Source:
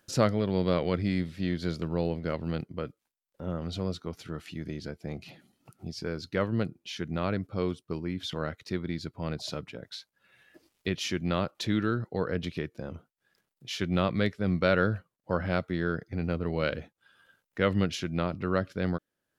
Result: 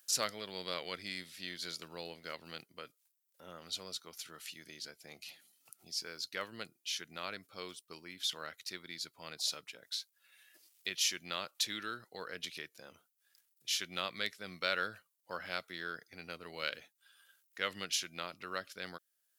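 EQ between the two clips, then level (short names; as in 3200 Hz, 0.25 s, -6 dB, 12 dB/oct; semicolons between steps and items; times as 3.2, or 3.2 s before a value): differentiator; +7.5 dB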